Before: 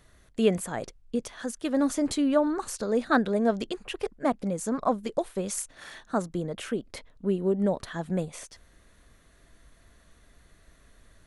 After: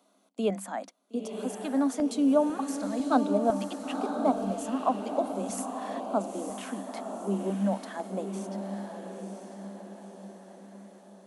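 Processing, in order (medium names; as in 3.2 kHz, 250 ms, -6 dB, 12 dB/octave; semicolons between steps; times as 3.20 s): rippled Chebyshev high-pass 190 Hz, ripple 9 dB; LFO notch square 1 Hz 420–1800 Hz; on a send: echo that smears into a reverb 971 ms, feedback 50%, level -6 dB; on the sum: trim +3 dB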